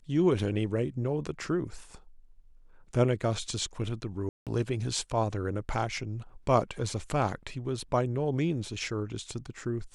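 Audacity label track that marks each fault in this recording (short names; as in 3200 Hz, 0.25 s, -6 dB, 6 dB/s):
4.290000	4.470000	gap 0.177 s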